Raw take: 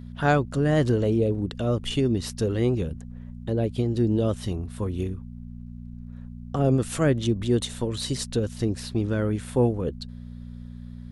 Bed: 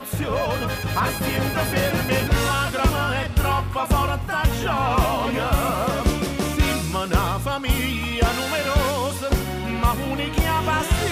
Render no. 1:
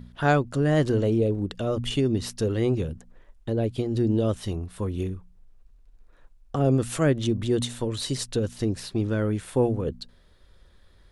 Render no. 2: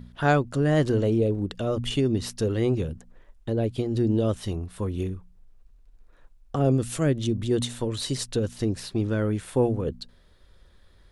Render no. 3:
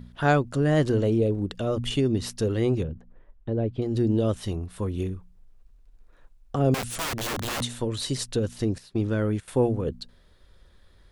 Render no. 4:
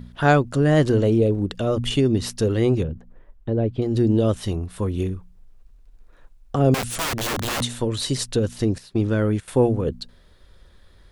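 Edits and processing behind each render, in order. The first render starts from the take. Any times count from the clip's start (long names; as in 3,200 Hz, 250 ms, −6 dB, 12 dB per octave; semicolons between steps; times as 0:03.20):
hum removal 60 Hz, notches 4
0:06.72–0:07.51: parametric band 1,100 Hz −5.5 dB 2.4 octaves
0:02.83–0:03.82: head-to-tape spacing loss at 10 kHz 31 dB; 0:06.74–0:07.61: wrap-around overflow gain 25 dB; 0:08.78–0:09.48: noise gate −32 dBFS, range −13 dB
level +4.5 dB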